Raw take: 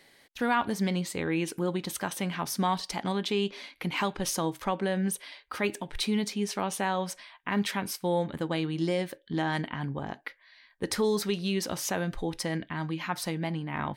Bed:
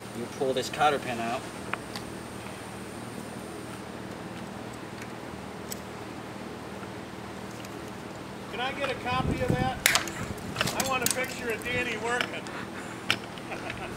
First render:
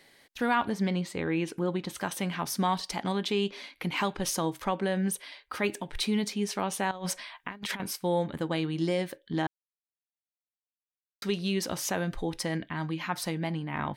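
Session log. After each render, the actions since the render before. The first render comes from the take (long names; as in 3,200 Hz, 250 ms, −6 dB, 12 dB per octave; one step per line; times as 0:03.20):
0:00.69–0:01.97: low-pass filter 3,600 Hz 6 dB per octave
0:06.91–0:07.80: compressor whose output falls as the input rises −35 dBFS, ratio −0.5
0:09.47–0:11.22: silence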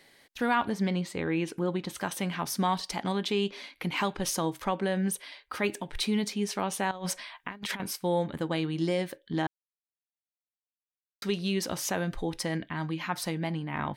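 no processing that can be heard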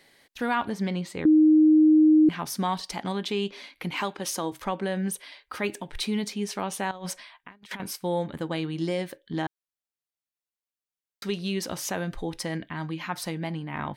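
0:01.25–0:02.29: beep over 310 Hz −13.5 dBFS
0:04.01–0:04.52: high-pass filter 210 Hz
0:06.93–0:07.71: fade out, to −18 dB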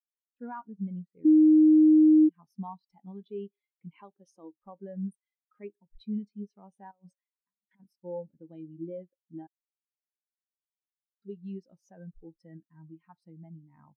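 downward compressor 5 to 1, threshold −21 dBFS, peak gain reduction 5.5 dB
every bin expanded away from the loudest bin 2.5 to 1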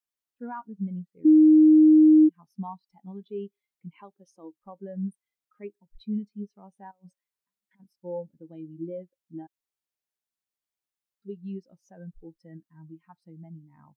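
level +3 dB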